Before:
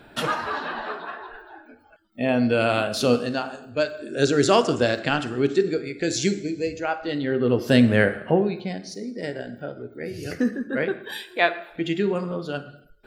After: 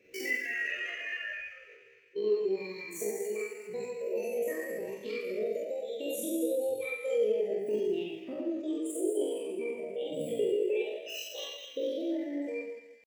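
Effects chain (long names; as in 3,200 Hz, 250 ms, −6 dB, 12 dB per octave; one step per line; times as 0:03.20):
fade-out on the ending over 1.53 s
downward compressor 16 to 1, threshold −32 dBFS, peak gain reduction 21 dB
high-pass filter 69 Hz 12 dB per octave
on a send: feedback echo with a high-pass in the loop 208 ms, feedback 64%, high-pass 680 Hz, level −7 dB
on the sum: noise reduction from a noise print of the clip's start 14 dB
four-comb reverb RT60 0.93 s, combs from 31 ms, DRR −5.5 dB
pitch shifter +8.5 semitones
drawn EQ curve 110 Hz 0 dB, 170 Hz −8 dB, 490 Hz +6 dB, 840 Hz −28 dB, 1,300 Hz −21 dB, 1,900 Hz +5 dB, 4,100 Hz −13 dB, 13,000 Hz −3 dB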